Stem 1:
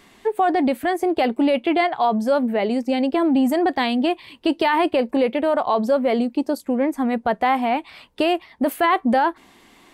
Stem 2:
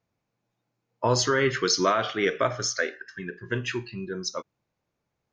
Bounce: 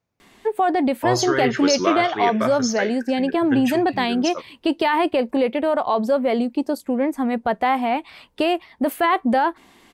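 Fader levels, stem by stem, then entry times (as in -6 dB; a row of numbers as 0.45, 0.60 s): -0.5, +0.5 dB; 0.20, 0.00 s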